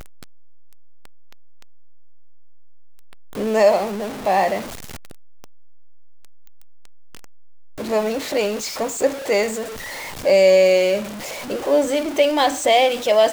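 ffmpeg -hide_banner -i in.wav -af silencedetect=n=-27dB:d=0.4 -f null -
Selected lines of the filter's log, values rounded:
silence_start: 0.00
silence_end: 3.37 | silence_duration: 3.37
silence_start: 4.62
silence_end: 7.79 | silence_duration: 3.17
silence_start: 9.64
silence_end: 10.25 | silence_duration: 0.61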